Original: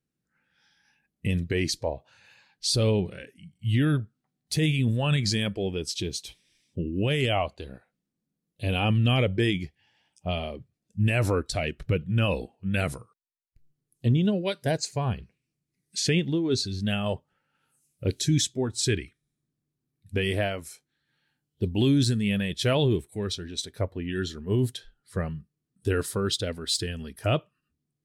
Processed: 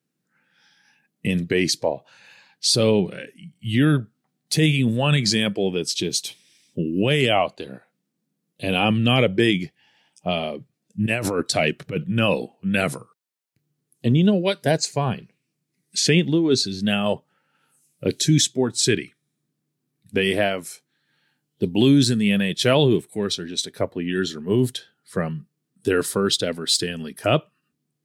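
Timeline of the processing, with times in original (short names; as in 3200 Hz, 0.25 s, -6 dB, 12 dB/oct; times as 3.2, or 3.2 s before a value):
6.1–7.01 high shelf 4100 Hz +5.5 dB
11.06–12.04 negative-ratio compressor -26 dBFS, ratio -0.5
whole clip: HPF 140 Hz 24 dB/oct; gain +7 dB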